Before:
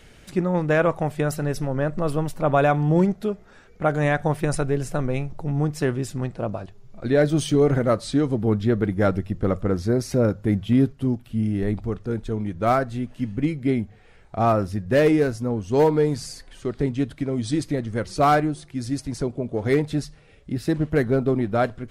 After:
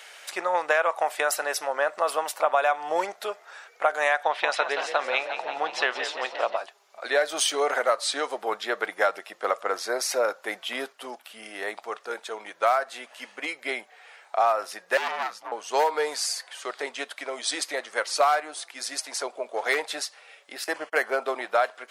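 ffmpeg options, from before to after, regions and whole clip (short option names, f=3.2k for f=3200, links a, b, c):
-filter_complex "[0:a]asettb=1/sr,asplit=3[a][b][c];[a]atrim=end=4.234[d];[b]atrim=start=4.23:end=6.57,asetpts=PTS-STARTPTS,afade=t=in:d=0.004:c=qsin,afade=t=out:st=2.336:d=0.004:c=qsin,lowpass=f=3.5k:t=q:w=2.4,asplit=8[e][f][g][h][i][j][k][l];[f]adelay=175,afreqshift=57,volume=-11dB[m];[g]adelay=350,afreqshift=114,volume=-15.2dB[n];[h]adelay=525,afreqshift=171,volume=-19.3dB[o];[i]adelay=700,afreqshift=228,volume=-23.5dB[p];[j]adelay=875,afreqshift=285,volume=-27.6dB[q];[k]adelay=1050,afreqshift=342,volume=-31.8dB[r];[l]adelay=1225,afreqshift=399,volume=-35.9dB[s];[e][m][n][o][p][q][r][s]amix=inputs=8:normalize=0,atrim=end_sample=103194[t];[c]atrim=start=6.566[u];[d][t]acrossfade=d=0.004:c1=hsin:c2=qsin[v];[v][u]acrossfade=d=0.004:c1=qsin:c2=hsin,asettb=1/sr,asplit=3[w][x][y];[w]atrim=end=14.974[z];[x]atrim=start=14.97:end=15.52,asetpts=PTS-STARTPTS,afade=t=in:d=0.004:c=qsin,afade=t=out:st=0.546:d=0.004:c=qsin,equalizer=f=9.1k:w=0.79:g=-11,aeval=exprs='(tanh(14.1*val(0)+0.7)-tanh(0.7))/14.1':c=same,afreqshift=-200[aa];[y]atrim=start=15.516[ab];[z][aa]acrossfade=d=0.004:c1=hsin:c2=qsin[ac];[ac][ab]acrossfade=d=0.004:c1=qsin:c2=hsin,asettb=1/sr,asplit=3[ad][ae][af];[ad]atrim=end=20.644[ag];[ae]atrim=start=20.64:end=21.23,asetpts=PTS-STARTPTS,afade=t=in:d=0.004:c=qsin,afade=t=out:st=0.586:d=0.004:c=qsin,agate=range=-27dB:threshold=-34dB:ratio=16:release=100:detection=peak,asuperstop=centerf=3800:order=4:qfactor=6.6,acompressor=mode=upward:threshold=-37dB:ratio=2.5:attack=3.2:release=140:knee=2.83:detection=peak[ah];[af]atrim=start=21.226[ai];[ag][ah]acrossfade=d=0.004:c1=hsin:c2=qsin[aj];[aj][ai]acrossfade=d=0.004:c1=qsin:c2=hsin,highpass=f=670:w=0.5412,highpass=f=670:w=1.3066,acompressor=threshold=-27dB:ratio=6,volume=8.5dB"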